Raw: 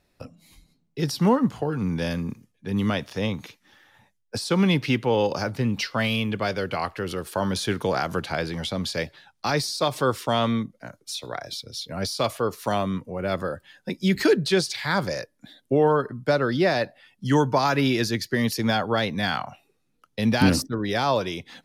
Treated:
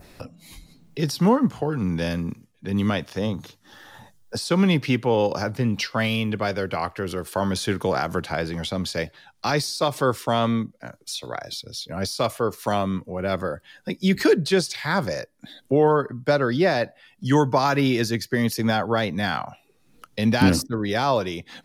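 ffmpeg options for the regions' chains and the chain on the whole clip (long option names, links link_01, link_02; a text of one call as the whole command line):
ffmpeg -i in.wav -filter_complex "[0:a]asettb=1/sr,asplit=3[link_01][link_02][link_03];[link_01]atrim=end=3.194[link_04];[link_02]atrim=start=3.19:end=4.38,asetpts=PTS-STARTPTS,afade=type=in:duration=0.004:curve=qsin,afade=type=out:start_time=1.186:duration=0.004:curve=qsin,equalizer=frequency=2300:width_type=o:width=0.48:gain=-12.5,bandreject=frequency=50:width_type=h:width=6,bandreject=frequency=100:width_type=h:width=6,bandreject=frequency=150:width_type=h:width=6[link_05];[link_03]atrim=start=4.376[link_06];[link_04][link_05]acrossfade=duration=0.004:curve1=hsin:curve2=qsin[link_07];[link_07][link_06]acrossfade=duration=0.004:curve1=qsin:curve2=hsin,adynamicequalizer=threshold=0.00794:dfrequency=3500:dqfactor=0.93:tfrequency=3500:tqfactor=0.93:attack=5:release=100:ratio=0.375:range=2:mode=cutabove:tftype=bell,acompressor=mode=upward:threshold=-35dB:ratio=2.5,volume=1.5dB" out.wav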